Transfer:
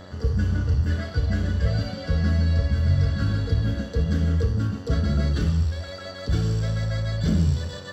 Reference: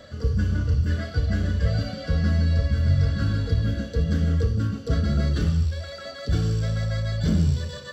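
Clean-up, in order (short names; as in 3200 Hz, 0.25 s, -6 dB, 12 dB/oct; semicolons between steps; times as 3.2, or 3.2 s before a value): de-hum 93 Hz, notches 21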